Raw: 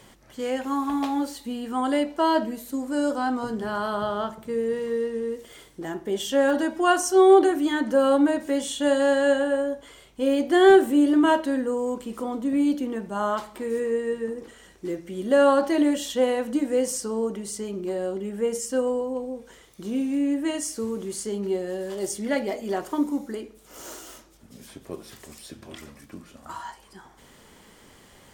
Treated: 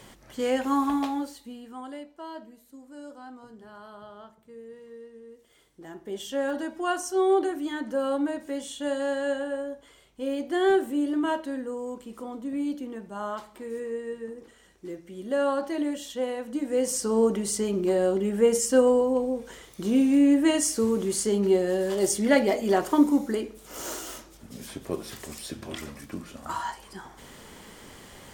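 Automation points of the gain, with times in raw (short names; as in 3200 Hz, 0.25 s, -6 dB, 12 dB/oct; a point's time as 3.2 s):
0.84 s +2 dB
1.32 s -7 dB
2.11 s -18.5 dB
5.26 s -18.5 dB
6.14 s -7.5 dB
16.46 s -7.5 dB
17.2 s +5 dB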